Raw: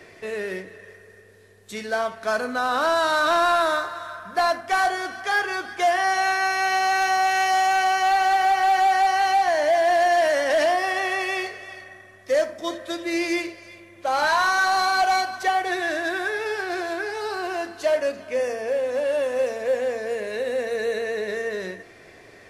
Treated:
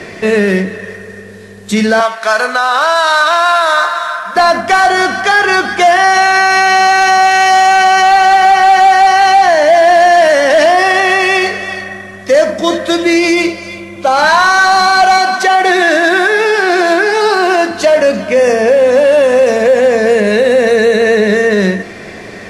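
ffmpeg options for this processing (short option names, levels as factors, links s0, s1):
-filter_complex "[0:a]asettb=1/sr,asplit=3[s0][s1][s2];[s0]atrim=end=2.004[s3];[s1]atrim=start=2:end=4.36,asetpts=PTS-STARTPTS,afade=t=in:d=0.004:c=qsin,afade=t=out:st=2.356:d=0.004:c=qsin,highpass=750[s4];[s2]atrim=start=4.356[s5];[s3][s4]acrossfade=d=0.004:c1=hsin:c2=qsin[s6];[s6][s5]acrossfade=d=0.004:c1=qsin:c2=hsin,asettb=1/sr,asplit=3[s7][s8][s9];[s7]atrim=end=13.164[s10];[s8]atrim=start=13.16:end=14.17,asetpts=PTS-STARTPTS,afade=t=in:d=0.004:c=qsin,afade=t=out:st=1.006:d=0.004:c=qsin,asuperstop=centerf=1800:order=4:qfactor=5.5[s11];[s9]atrim=start=14.166[s12];[s10][s11]acrossfade=d=0.004:c1=hsin:c2=qsin[s13];[s13][s12]acrossfade=d=0.004:c1=qsin:c2=hsin,asettb=1/sr,asplit=3[s14][s15][s16];[s14]atrim=end=15.184[s17];[s15]atrim=start=15.18:end=17.71,asetpts=PTS-STARTPTS,afade=t=in:d=0.004:c=qsin,afade=t=out:st=2.526:d=0.004:c=qsin,highpass=f=200:w=0.5412,highpass=f=200:w=1.3066[s18];[s16]atrim=start=17.706[s19];[s17][s18]acrossfade=d=0.004:c1=hsin:c2=qsin[s20];[s20][s19]acrossfade=d=0.004:c1=qsin:c2=hsin,lowpass=9800,equalizer=f=200:t=o:w=0.34:g=13,alimiter=level_in=9.44:limit=0.891:release=50:level=0:latency=1,volume=0.891"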